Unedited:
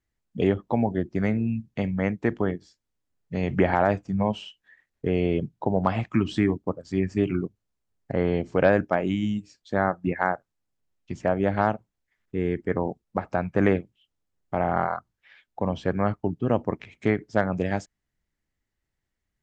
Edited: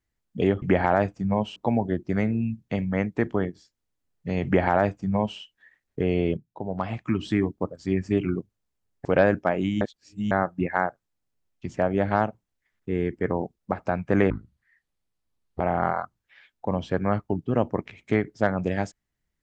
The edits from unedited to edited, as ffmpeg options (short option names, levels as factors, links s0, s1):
-filter_complex "[0:a]asplit=9[s0][s1][s2][s3][s4][s5][s6][s7][s8];[s0]atrim=end=0.622[s9];[s1]atrim=start=3.508:end=4.452[s10];[s2]atrim=start=0.618:end=5.43,asetpts=PTS-STARTPTS,afade=t=out:st=4.808:d=0.004:c=hsin:silence=0.16788[s11];[s3]atrim=start=5.43:end=8.112,asetpts=PTS-STARTPTS,afade=t=in:d=1.54:c=qsin:silence=0.16788[s12];[s4]atrim=start=8.508:end=9.272[s13];[s5]atrim=start=9.268:end=9.772,asetpts=PTS-STARTPTS,areverse[s14];[s6]atrim=start=9.768:end=13.764[s15];[s7]atrim=start=13.76:end=14.54,asetpts=PTS-STARTPTS,asetrate=26460,aresample=44100[s16];[s8]atrim=start=14.536[s17];[s9][s10]acrossfade=d=0.004:c1=hsin:c2=hsin[s18];[s11][s12]concat=n=2:v=0:a=1[s19];[s18][s19]acrossfade=d=0.004:c1=hsin:c2=hsin[s20];[s20][s13]acrossfade=d=0.004:c1=hsin:c2=hsin[s21];[s21][s14]acrossfade=d=0.004:c1=hsin:c2=hsin[s22];[s22][s15]acrossfade=d=0.004:c1=hsin:c2=hsin[s23];[s23][s16]acrossfade=d=0.004:c1=hsin:c2=hsin[s24];[s24][s17]acrossfade=d=0.004:c1=hsin:c2=hsin"